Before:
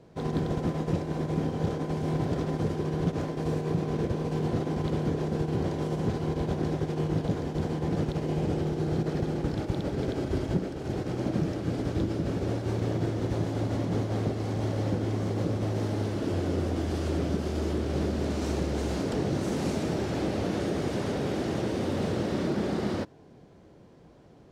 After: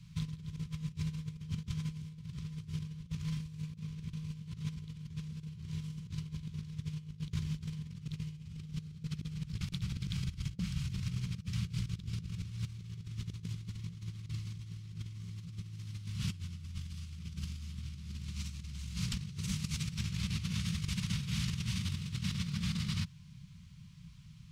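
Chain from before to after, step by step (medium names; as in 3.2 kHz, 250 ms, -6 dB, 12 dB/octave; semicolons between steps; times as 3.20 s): elliptic band-stop 170–1100 Hz, stop band 40 dB; high-order bell 1.1 kHz -14 dB; compressor with a negative ratio -38 dBFS, ratio -0.5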